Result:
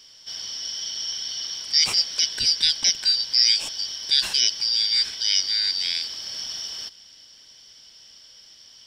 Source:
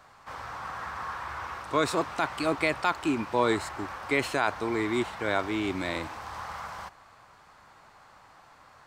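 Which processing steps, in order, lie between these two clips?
band-splitting scrambler in four parts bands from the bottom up 4321
level +6 dB

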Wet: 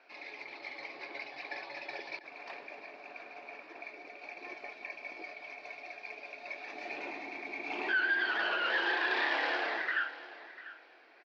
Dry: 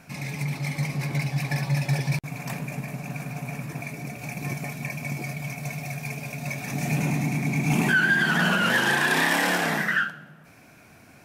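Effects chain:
Chebyshev band-pass filter 340–4,600 Hz, order 4
repeating echo 695 ms, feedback 23%, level −16 dB
level −8 dB

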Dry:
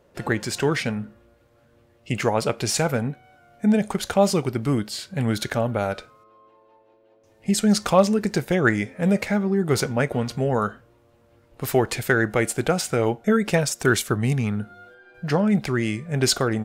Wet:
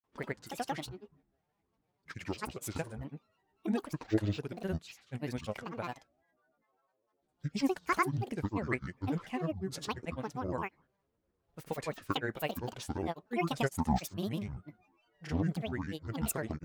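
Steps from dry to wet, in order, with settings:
granular cloud, pitch spread up and down by 12 semitones
expander for the loud parts 1.5 to 1, over −38 dBFS
level −9 dB

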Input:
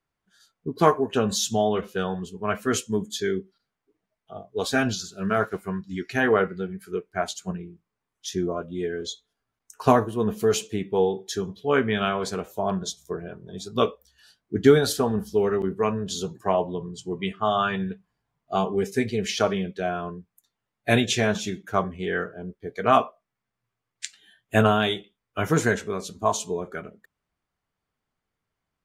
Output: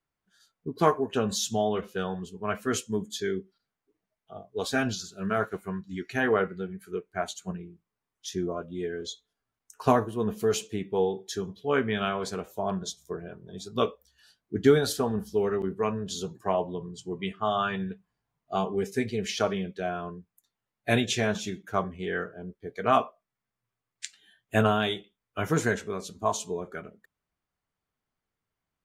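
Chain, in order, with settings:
0:05.14–0:07.54: notch filter 5,100 Hz, Q 6.1
level −4 dB

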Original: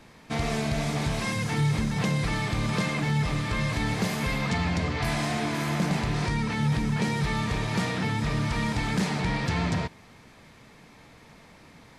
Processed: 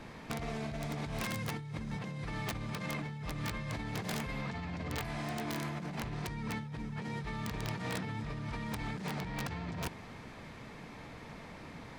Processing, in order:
high-shelf EQ 4,200 Hz −9 dB
compressor whose output falls as the input rises −35 dBFS, ratio −1
wrap-around overflow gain 24.5 dB
level −3.5 dB

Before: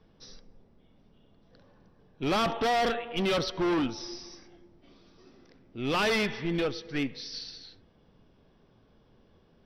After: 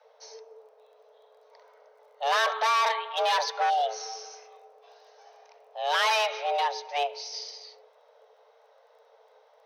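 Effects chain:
surface crackle 15 per second −59 dBFS
healed spectral selection 0:03.72–0:04.02, 480–2,300 Hz after
frequency shifter +430 Hz
level +2 dB

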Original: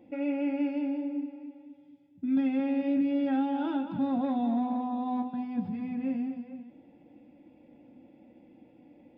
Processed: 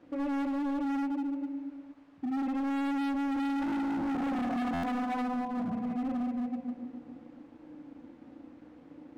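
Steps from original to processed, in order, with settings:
tuned comb filter 84 Hz, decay 0.16 s, harmonics all, mix 40%
on a send: delay with a low-pass on its return 91 ms, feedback 72%, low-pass 480 Hz, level −21 dB
on the sum: feedback delay network reverb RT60 2.3 s, low-frequency decay 1×, high-frequency decay 0.85×, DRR −1.5 dB
in parallel at −4.5 dB: bit-depth reduction 8 bits, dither triangular
on the sum: dead-zone distortion −58.5 dBFS
low-pass filter 1,400 Hz 12 dB per octave
hard clipping −28 dBFS, distortion −4 dB
buffer that repeats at 0:04.73, samples 512, times 8
level −2 dB

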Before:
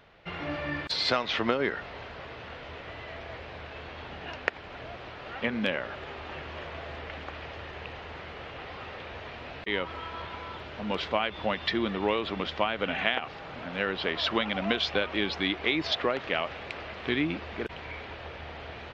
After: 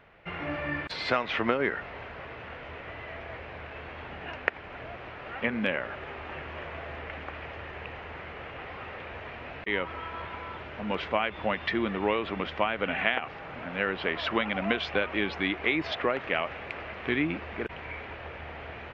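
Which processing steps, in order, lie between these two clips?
high shelf with overshoot 3,100 Hz −7.5 dB, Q 1.5

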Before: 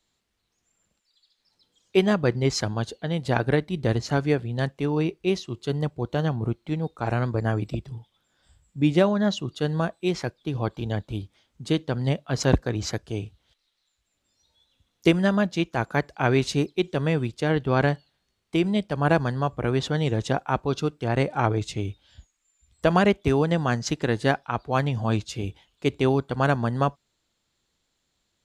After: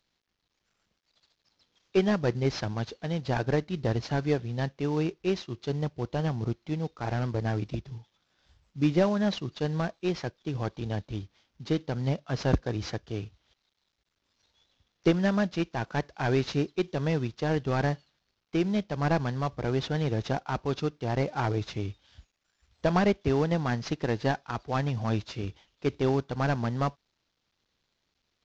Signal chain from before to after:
variable-slope delta modulation 32 kbit/s
level −3.5 dB

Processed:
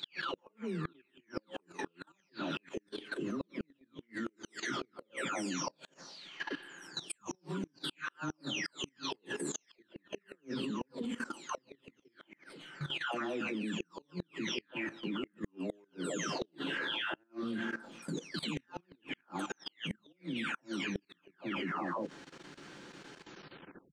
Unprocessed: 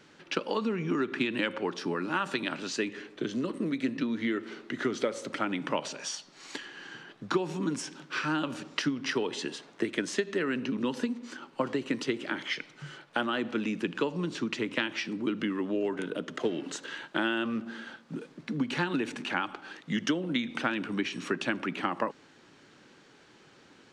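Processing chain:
every frequency bin delayed by itself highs early, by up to 677 ms
output level in coarse steps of 15 dB
gate with flip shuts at −34 dBFS, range −39 dB
level +8.5 dB

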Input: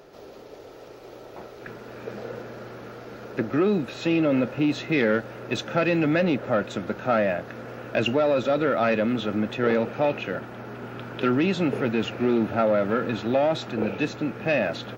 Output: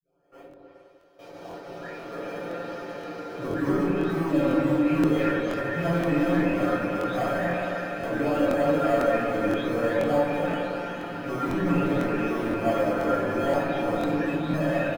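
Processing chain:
every frequency bin delayed by itself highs late, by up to 862 ms
noise gate with hold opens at −35 dBFS
low-shelf EQ 250 Hz −9 dB
hard clipping −29.5 dBFS, distortion −7 dB
treble cut that deepens with the level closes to 1,800 Hz, closed at −31.5 dBFS
in parallel at −12 dB: sample-rate reduction 1,900 Hz, jitter 0%
on the sum: low-shelf EQ 62 Hz −11.5 dB
comb filter 7.1 ms, depth 84%
on a send: echo whose low-pass opens from repeat to repeat 102 ms, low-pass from 200 Hz, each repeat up 2 octaves, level 0 dB
on the sum: rectangular room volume 540 cubic metres, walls furnished, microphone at 6.3 metres
regular buffer underruns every 0.50 s, samples 1,024, repeat, from 0:00.49
level −6.5 dB

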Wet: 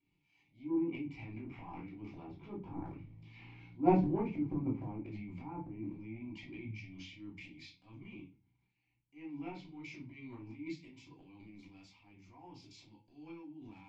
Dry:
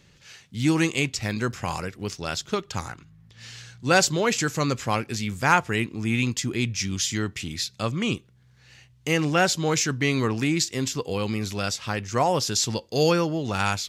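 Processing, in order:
source passing by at 0:03.35, 9 m/s, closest 3.1 metres
treble cut that deepens with the level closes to 650 Hz, closed at −36 dBFS
formant filter u
low-shelf EQ 66 Hz +10 dB
transient designer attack −9 dB, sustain +12 dB
convolution reverb RT60 0.30 s, pre-delay 3 ms, DRR −4 dB
level +1.5 dB

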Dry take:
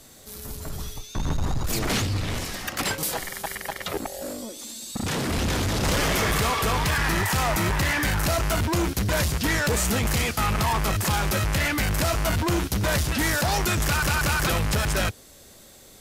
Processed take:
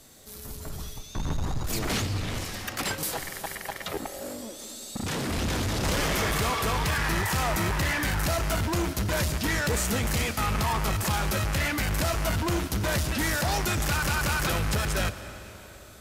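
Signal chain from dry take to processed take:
comb and all-pass reverb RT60 4 s, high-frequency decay 0.8×, pre-delay 70 ms, DRR 11.5 dB
level −3.5 dB

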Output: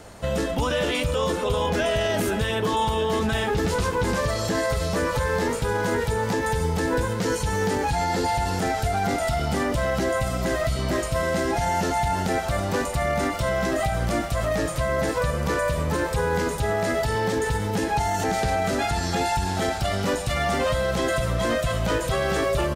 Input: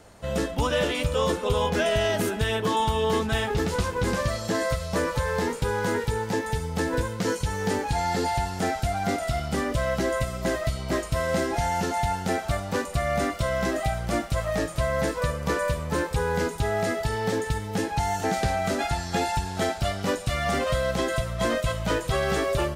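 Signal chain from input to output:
brickwall limiter −23 dBFS, peak gain reduction 8 dB
slap from a distant wall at 210 metres, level −12 dB
level +7 dB

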